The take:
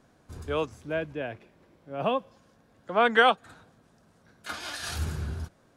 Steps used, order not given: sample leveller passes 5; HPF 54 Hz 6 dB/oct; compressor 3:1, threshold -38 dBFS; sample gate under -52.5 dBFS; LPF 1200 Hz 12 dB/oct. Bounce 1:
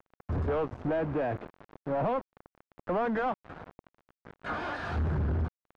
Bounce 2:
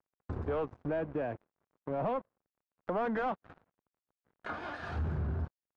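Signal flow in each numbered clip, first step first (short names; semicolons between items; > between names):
HPF > compressor > sample gate > sample leveller > LPF; sample gate > HPF > sample leveller > compressor > LPF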